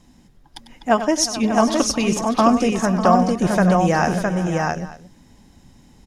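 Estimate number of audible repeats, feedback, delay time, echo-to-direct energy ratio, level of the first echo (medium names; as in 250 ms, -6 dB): 6, no regular repeats, 97 ms, -2.0 dB, -11.5 dB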